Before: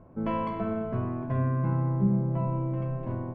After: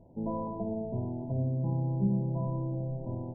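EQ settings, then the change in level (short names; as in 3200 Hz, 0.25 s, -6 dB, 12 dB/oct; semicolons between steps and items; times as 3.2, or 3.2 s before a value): brick-wall FIR low-pass 1000 Hz; -3.5 dB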